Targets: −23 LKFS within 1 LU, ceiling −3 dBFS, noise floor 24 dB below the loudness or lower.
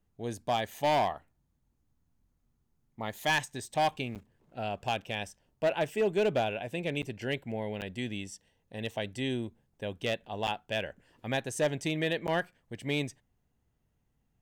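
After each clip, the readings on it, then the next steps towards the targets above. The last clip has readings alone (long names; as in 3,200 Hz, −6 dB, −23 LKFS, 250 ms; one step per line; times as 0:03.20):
share of clipped samples 0.8%; peaks flattened at −21.5 dBFS; number of dropouts 5; longest dropout 8.4 ms; integrated loudness −33.0 LKFS; sample peak −21.5 dBFS; target loudness −23.0 LKFS
→ clipped peaks rebuilt −21.5 dBFS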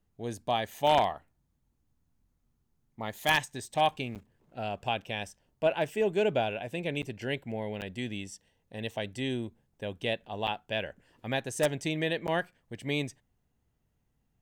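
share of clipped samples 0.0%; number of dropouts 5; longest dropout 8.4 ms
→ repair the gap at 0:04.15/0:07.02/0:07.81/0:10.47/0:12.27, 8.4 ms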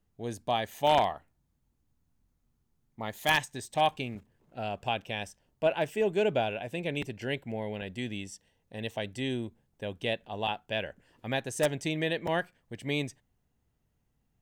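number of dropouts 0; integrated loudness −32.0 LKFS; sample peak −12.5 dBFS; target loudness −23.0 LKFS
→ level +9 dB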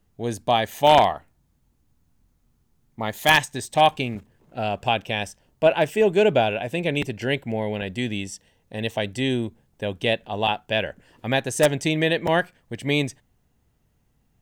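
integrated loudness −23.0 LKFS; sample peak −3.5 dBFS; background noise floor −67 dBFS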